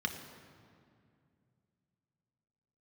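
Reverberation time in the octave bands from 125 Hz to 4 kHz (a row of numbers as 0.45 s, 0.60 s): 3.6 s, 3.2 s, 2.5 s, 2.2 s, 2.0 s, 1.5 s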